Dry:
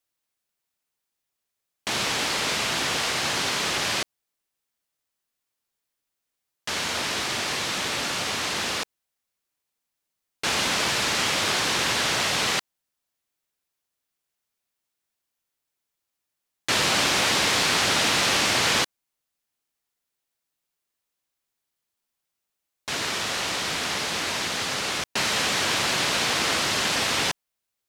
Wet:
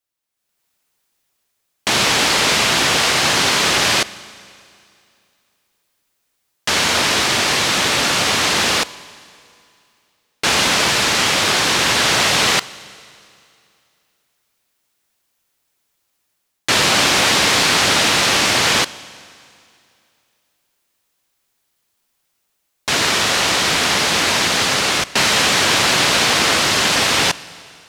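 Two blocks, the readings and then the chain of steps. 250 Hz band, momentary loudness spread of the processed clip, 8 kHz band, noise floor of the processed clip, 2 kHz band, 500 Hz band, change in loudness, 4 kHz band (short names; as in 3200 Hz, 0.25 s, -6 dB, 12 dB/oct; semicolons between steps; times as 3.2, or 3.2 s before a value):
+9.0 dB, 5 LU, +9.0 dB, -71 dBFS, +9.0 dB, +9.0 dB, +9.0 dB, +9.0 dB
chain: AGC gain up to 14.5 dB; Schroeder reverb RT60 2.5 s, combs from 31 ms, DRR 18 dB; gain -1.5 dB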